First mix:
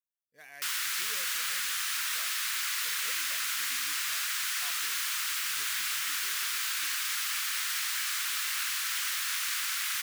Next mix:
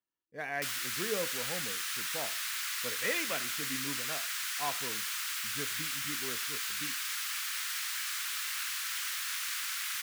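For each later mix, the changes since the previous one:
speech: remove first-order pre-emphasis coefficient 0.9
background −4.0 dB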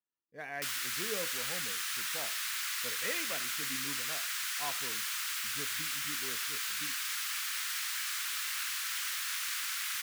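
speech −4.5 dB

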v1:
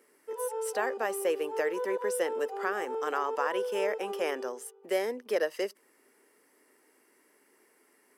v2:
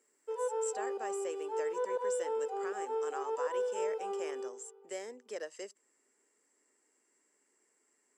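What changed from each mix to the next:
speech: add transistor ladder low-pass 7,700 Hz, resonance 85%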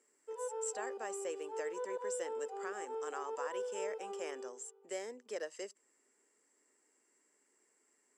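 background −6.5 dB

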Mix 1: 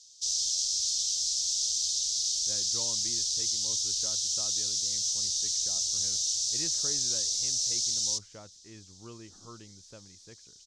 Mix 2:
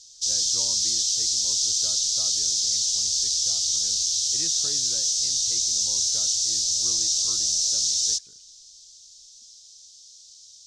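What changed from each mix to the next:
speech: entry −2.20 s
background +6.0 dB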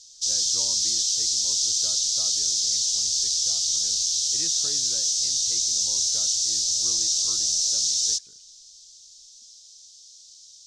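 master: add parametric band 82 Hz −2.5 dB 2.8 octaves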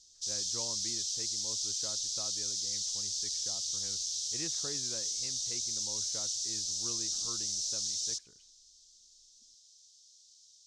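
background −11.5 dB

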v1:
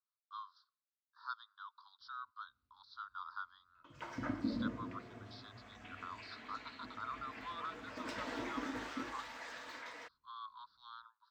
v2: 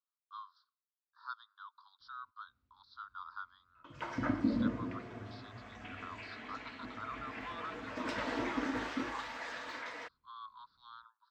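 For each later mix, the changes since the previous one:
background +6.0 dB
master: add high-shelf EQ 7,300 Hz −10.5 dB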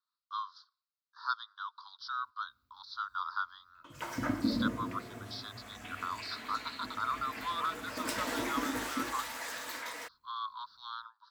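speech +9.0 dB
master: remove high-frequency loss of the air 180 metres

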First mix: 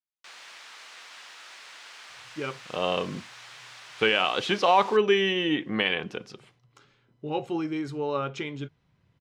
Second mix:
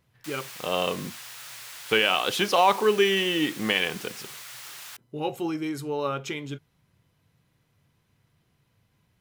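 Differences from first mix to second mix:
speech: entry −2.10 s
master: remove high-frequency loss of the air 110 metres

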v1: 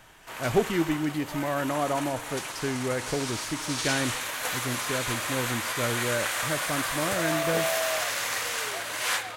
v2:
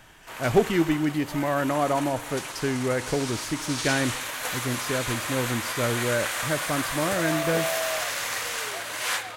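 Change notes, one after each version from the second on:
speech +3.5 dB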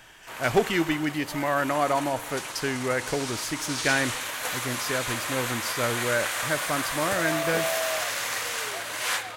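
speech: add tilt shelving filter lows −5 dB, about 680 Hz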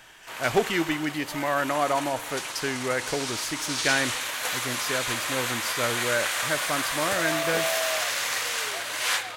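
background: add parametric band 3,900 Hz +3.5 dB 2 octaves
master: add low-shelf EQ 220 Hz −4.5 dB

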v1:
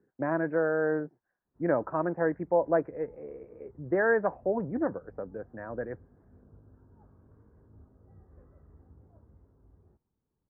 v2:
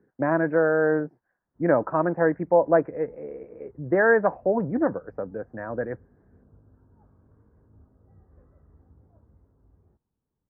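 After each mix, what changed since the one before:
speech +6.5 dB
master: add parametric band 380 Hz −2.5 dB 0.31 octaves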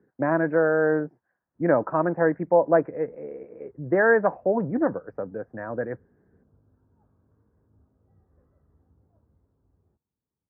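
background −6.0 dB
master: add high-pass filter 60 Hz

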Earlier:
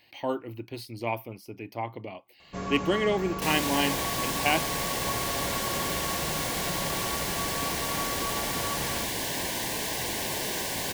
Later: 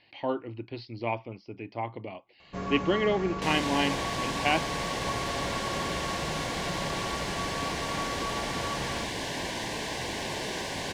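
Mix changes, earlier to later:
speech: add Butterworth low-pass 5,200 Hz 48 dB per octave
master: add high-frequency loss of the air 79 metres

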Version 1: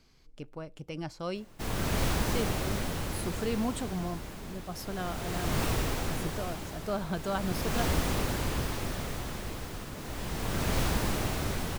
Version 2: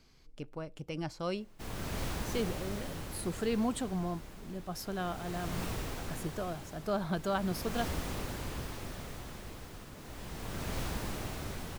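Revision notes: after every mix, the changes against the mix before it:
background −8.0 dB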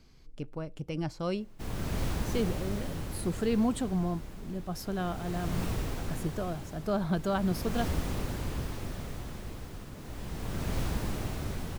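master: add low-shelf EQ 380 Hz +6.5 dB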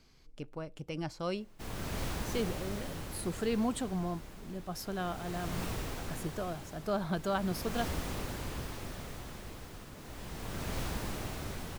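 master: add low-shelf EQ 380 Hz −6.5 dB

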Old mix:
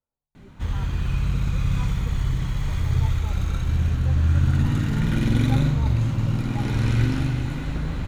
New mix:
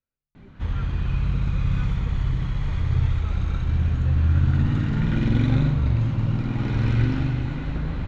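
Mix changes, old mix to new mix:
speech: remove low-pass with resonance 890 Hz, resonance Q 3.6
master: add high-frequency loss of the air 160 metres

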